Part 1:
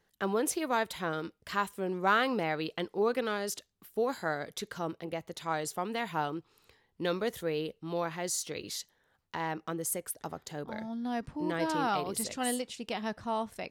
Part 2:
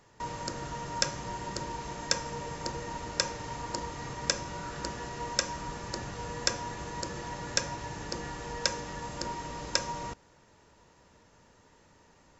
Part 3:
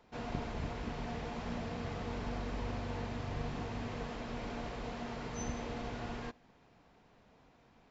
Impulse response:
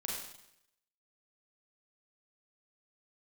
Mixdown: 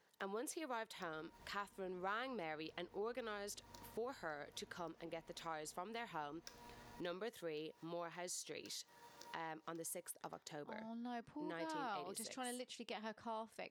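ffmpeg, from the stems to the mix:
-filter_complex "[0:a]highpass=f=280:p=1,highshelf=f=12k:g=-9,volume=-1dB,asplit=2[a][b];[1:a]highpass=f=550:p=1,acrusher=samples=4:mix=1:aa=0.000001,volume=-19.5dB,asplit=2[c][d];[d]volume=-19.5dB[e];[2:a]alimiter=level_in=7.5dB:limit=-24dB:level=0:latency=1:release=367,volume=-7.5dB,adelay=850,volume=-19dB[f];[b]apad=whole_len=546400[g];[c][g]sidechaincompress=threshold=-52dB:ratio=8:attack=23:release=103[h];[e]aecho=0:1:578:1[i];[a][h][f][i]amix=inputs=4:normalize=0,acompressor=threshold=-53dB:ratio=2"

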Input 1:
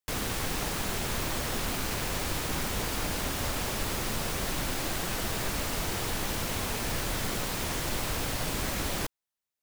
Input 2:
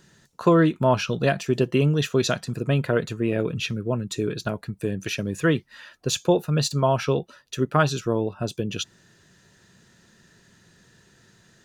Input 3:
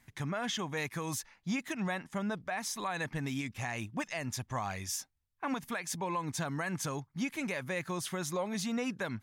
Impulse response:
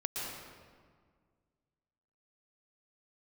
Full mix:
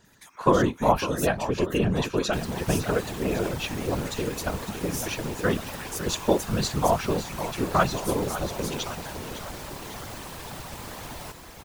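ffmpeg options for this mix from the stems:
-filter_complex "[0:a]adelay=2250,volume=-3dB,asplit=2[a][b];[b]volume=-7dB[c];[1:a]volume=2dB,asplit=2[d][e];[e]volume=-11dB[f];[2:a]highpass=920,aemphasis=mode=production:type=riaa,adelay=50,volume=-3.5dB[g];[c][f]amix=inputs=2:normalize=0,aecho=0:1:556|1112|1668|2224|2780|3336|3892|4448|5004:1|0.58|0.336|0.195|0.113|0.0656|0.0381|0.0221|0.0128[h];[a][d][g][h]amix=inputs=4:normalize=0,equalizer=f=880:t=o:w=0.72:g=6,afftfilt=real='hypot(re,im)*cos(2*PI*random(0))':imag='hypot(re,im)*sin(2*PI*random(1))':win_size=512:overlap=0.75"

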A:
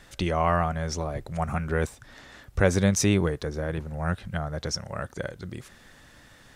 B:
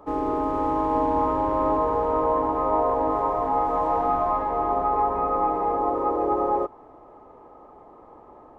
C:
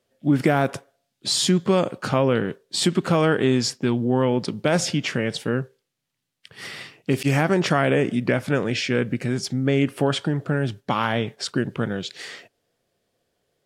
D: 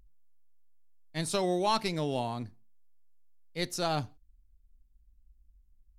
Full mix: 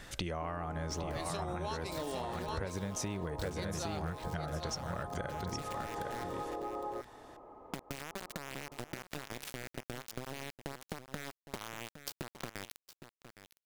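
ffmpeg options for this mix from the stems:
-filter_complex "[0:a]volume=2dB,asplit=2[a][b];[b]volume=-10dB[c];[1:a]adelay=350,volume=-5.5dB[d];[2:a]acompressor=threshold=-25dB:ratio=16,acrusher=bits=3:mix=0:aa=0.000001,adelay=650,volume=-5dB,asplit=2[e][f];[f]volume=-20.5dB[g];[3:a]highpass=270,volume=2.5dB,asplit=2[h][i];[i]volume=-10.5dB[j];[d][e]amix=inputs=2:normalize=0,acompressor=threshold=-35dB:ratio=6,volume=0dB[k];[a][h]amix=inputs=2:normalize=0,acompressor=threshold=-24dB:ratio=4,volume=0dB[l];[c][g][j]amix=inputs=3:normalize=0,aecho=0:1:811:1[m];[k][l][m]amix=inputs=3:normalize=0,acompressor=threshold=-35dB:ratio=6"

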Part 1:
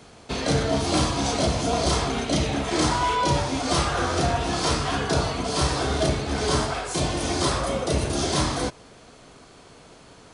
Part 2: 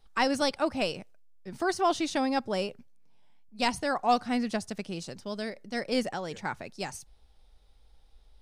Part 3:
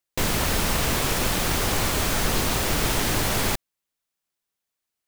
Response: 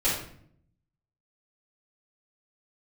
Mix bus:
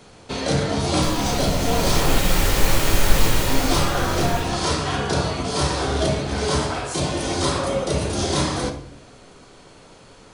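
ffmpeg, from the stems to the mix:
-filter_complex "[0:a]volume=-0.5dB,asplit=3[a][b][c];[a]atrim=end=2.2,asetpts=PTS-STARTPTS,afade=t=out:st=2.196:d=0.004:c=hsin[d];[b]atrim=start=2.2:end=3.47,asetpts=PTS-STARTPTS,volume=0[e];[c]atrim=start=3.47,asetpts=PTS-STARTPTS,afade=t=in:d=0.004:c=hsin[f];[d][e][f]concat=n=3:v=0:a=1,asplit=2[g][h];[h]volume=-15.5dB[i];[2:a]adelay=850,volume=-4.5dB,afade=t=in:st=1.53:d=0.79:silence=0.281838,afade=t=out:st=3.23:d=0.67:silence=0.281838,asplit=2[j][k];[k]volume=-6dB[l];[3:a]atrim=start_sample=2205[m];[i][l]amix=inputs=2:normalize=0[n];[n][m]afir=irnorm=-1:irlink=0[o];[g][j][o]amix=inputs=3:normalize=0"

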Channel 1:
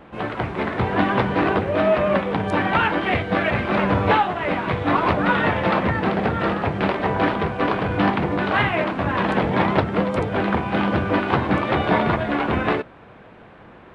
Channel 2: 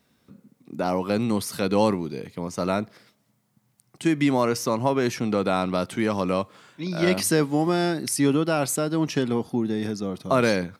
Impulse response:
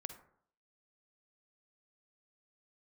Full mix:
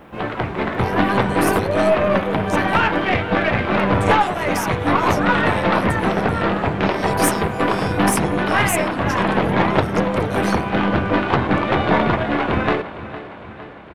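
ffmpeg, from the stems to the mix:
-filter_complex "[0:a]volume=2dB,asplit=2[a][b];[b]volume=-14.5dB[c];[1:a]aderivative,volume=1.5dB[d];[c]aecho=0:1:458|916|1374|1832|2290|2748|3206|3664|4122:1|0.57|0.325|0.185|0.106|0.0602|0.0343|0.0195|0.0111[e];[a][d][e]amix=inputs=3:normalize=0,aeval=exprs='0.841*(cos(1*acos(clip(val(0)/0.841,-1,1)))-cos(1*PI/2))+0.0473*(cos(6*acos(clip(val(0)/0.841,-1,1)))-cos(6*PI/2))':c=same"

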